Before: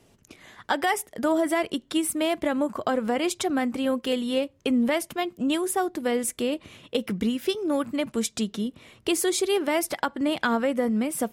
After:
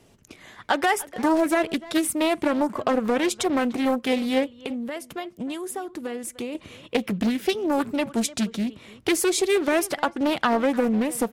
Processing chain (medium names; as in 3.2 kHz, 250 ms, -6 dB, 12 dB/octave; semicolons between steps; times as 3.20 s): 4.54–6.55 s: compression 5:1, threshold -32 dBFS, peak gain reduction 11.5 dB; speakerphone echo 300 ms, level -17 dB; loudspeaker Doppler distortion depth 0.52 ms; trim +2.5 dB